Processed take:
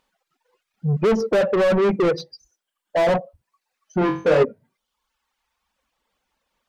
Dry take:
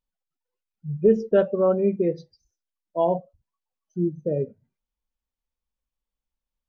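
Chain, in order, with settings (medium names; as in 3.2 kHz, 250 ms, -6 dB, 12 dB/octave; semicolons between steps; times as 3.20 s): reverb removal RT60 1 s; in parallel at +2.5 dB: peak limiter -17.5 dBFS, peak gain reduction 9.5 dB; on the sum: overdrive pedal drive 34 dB, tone 1.7 kHz, clips at -4.5 dBFS; 3.99–4.43 s: flutter echo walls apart 3.7 m, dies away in 0.38 s; trim -6.5 dB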